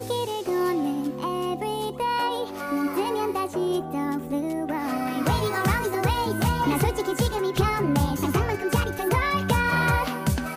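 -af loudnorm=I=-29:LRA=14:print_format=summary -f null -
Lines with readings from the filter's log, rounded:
Input Integrated:    -24.9 LUFS
Input True Peak:     -10.3 dBTP
Input LRA:             3.2 LU
Input Threshold:     -34.9 LUFS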